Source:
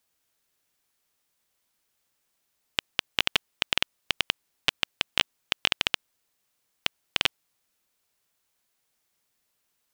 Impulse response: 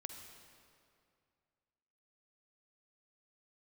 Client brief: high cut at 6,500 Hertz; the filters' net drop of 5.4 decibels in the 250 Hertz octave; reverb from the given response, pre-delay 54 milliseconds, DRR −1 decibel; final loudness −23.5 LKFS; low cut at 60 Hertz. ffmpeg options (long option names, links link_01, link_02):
-filter_complex "[0:a]highpass=60,lowpass=6500,equalizer=frequency=250:width_type=o:gain=-7.5,asplit=2[link_01][link_02];[1:a]atrim=start_sample=2205,adelay=54[link_03];[link_02][link_03]afir=irnorm=-1:irlink=0,volume=4dB[link_04];[link_01][link_04]amix=inputs=2:normalize=0,volume=2dB"